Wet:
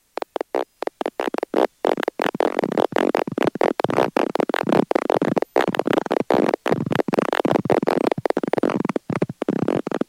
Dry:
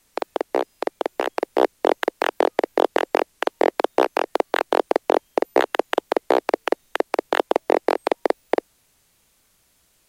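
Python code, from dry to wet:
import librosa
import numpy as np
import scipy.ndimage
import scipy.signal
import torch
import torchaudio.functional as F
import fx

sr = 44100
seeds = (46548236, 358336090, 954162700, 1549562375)

y = fx.echo_pitch(x, sr, ms=766, semitones=-6, count=3, db_per_echo=-3.0)
y = F.gain(torch.from_numpy(y), -1.0).numpy()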